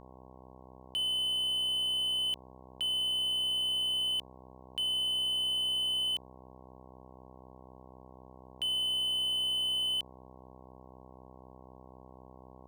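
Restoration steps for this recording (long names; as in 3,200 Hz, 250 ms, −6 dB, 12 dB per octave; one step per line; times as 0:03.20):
hum removal 64 Hz, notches 17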